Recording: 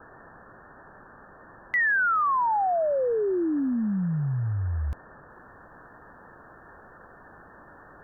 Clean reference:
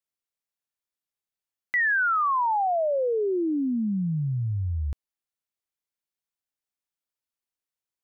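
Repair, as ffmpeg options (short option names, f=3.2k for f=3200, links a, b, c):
-af "afwtdn=0.011,asetnsamples=n=441:p=0,asendcmd='5.3 volume volume -5dB',volume=0dB"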